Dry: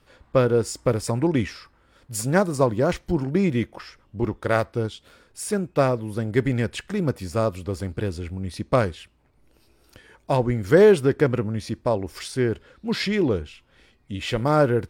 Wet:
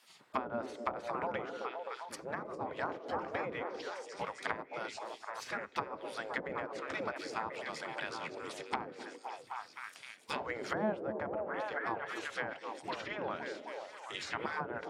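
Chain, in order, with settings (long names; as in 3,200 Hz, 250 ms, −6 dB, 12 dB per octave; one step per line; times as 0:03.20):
gate on every frequency bin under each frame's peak −15 dB weak
high-pass filter 87 Hz 24 dB per octave
high-shelf EQ 3,700 Hz +7 dB
echo through a band-pass that steps 259 ms, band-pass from 370 Hz, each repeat 0.7 octaves, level −1 dB
treble cut that deepens with the level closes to 620 Hz, closed at −27.5 dBFS
level −1 dB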